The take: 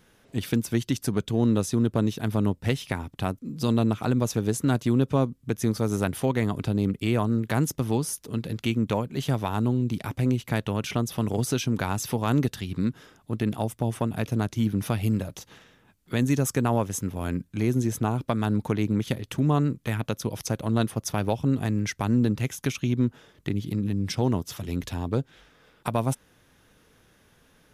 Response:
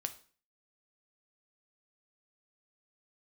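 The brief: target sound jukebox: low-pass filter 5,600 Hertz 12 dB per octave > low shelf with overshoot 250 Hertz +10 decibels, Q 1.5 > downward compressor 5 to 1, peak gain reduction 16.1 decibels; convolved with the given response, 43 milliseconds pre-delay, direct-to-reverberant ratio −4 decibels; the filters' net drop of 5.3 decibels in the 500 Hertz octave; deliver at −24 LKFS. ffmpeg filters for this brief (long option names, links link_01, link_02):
-filter_complex "[0:a]equalizer=frequency=500:width_type=o:gain=-4.5,asplit=2[link_01][link_02];[1:a]atrim=start_sample=2205,adelay=43[link_03];[link_02][link_03]afir=irnorm=-1:irlink=0,volume=4.5dB[link_04];[link_01][link_04]amix=inputs=2:normalize=0,lowpass=5600,lowshelf=frequency=250:width_type=q:width=1.5:gain=10,acompressor=threshold=-20dB:ratio=5,volume=-0.5dB"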